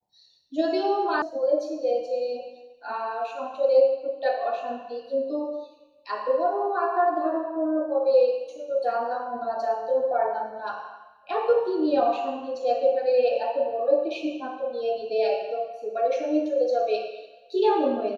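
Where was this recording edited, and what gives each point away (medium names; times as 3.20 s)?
1.22 s: sound stops dead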